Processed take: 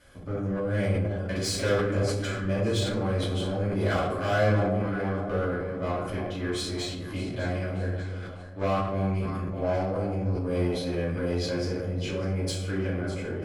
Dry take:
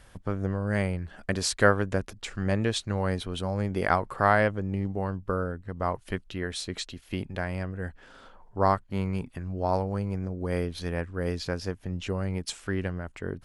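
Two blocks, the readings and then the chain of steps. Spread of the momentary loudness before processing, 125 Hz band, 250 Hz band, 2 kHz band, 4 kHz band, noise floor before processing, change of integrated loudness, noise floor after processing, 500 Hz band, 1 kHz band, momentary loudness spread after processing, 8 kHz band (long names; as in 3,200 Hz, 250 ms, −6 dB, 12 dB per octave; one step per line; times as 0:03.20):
11 LU, +2.5 dB, +1.5 dB, −2.5 dB, +1.5 dB, −55 dBFS, +1.0 dB, −37 dBFS, +2.0 dB, −4.0 dB, 7 LU, −0.5 dB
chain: on a send: delay that swaps between a low-pass and a high-pass 300 ms, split 950 Hz, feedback 61%, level −9 dB
on the sum: tube saturation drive 20 dB, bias 0.35
notch comb filter 910 Hz
in parallel at −7 dB: gain into a clipping stage and back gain 33 dB
on the sum: rectangular room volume 150 cubic metres, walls mixed, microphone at 2.6 metres
transient designer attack 0 dB, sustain +6 dB
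level −9 dB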